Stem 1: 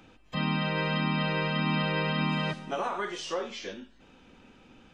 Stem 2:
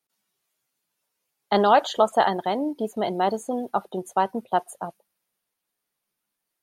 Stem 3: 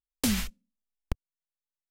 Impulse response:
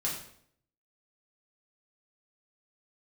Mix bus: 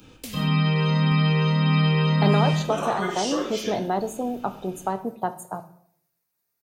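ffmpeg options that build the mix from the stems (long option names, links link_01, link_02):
-filter_complex "[0:a]volume=2.5dB,asplit=2[link_01][link_02];[link_02]volume=-4.5dB[link_03];[1:a]equalizer=frequency=160:width_type=o:width=0.33:gain=6,equalizer=frequency=3150:width_type=o:width=0.33:gain=-11,equalizer=frequency=10000:width_type=o:width=0.33:gain=-9,acrossover=split=380[link_04][link_05];[link_05]acompressor=threshold=-23dB:ratio=6[link_06];[link_04][link_06]amix=inputs=2:normalize=0,equalizer=frequency=120:width=5.8:gain=9.5,adelay=700,volume=-2.5dB,asplit=2[link_07][link_08];[link_08]volume=-11.5dB[link_09];[2:a]equalizer=frequency=1200:width=0.4:gain=14.5,volume=-17dB,asplit=2[link_10][link_11];[link_11]volume=-17.5dB[link_12];[link_01][link_10]amix=inputs=2:normalize=0,asuperstop=centerf=1200:order=8:qfactor=0.88,acompressor=threshold=-35dB:ratio=2,volume=0dB[link_13];[3:a]atrim=start_sample=2205[link_14];[link_03][link_09][link_12]amix=inputs=3:normalize=0[link_15];[link_15][link_14]afir=irnorm=-1:irlink=0[link_16];[link_07][link_13][link_16]amix=inputs=3:normalize=0,highshelf=frequency=7600:gain=10.5"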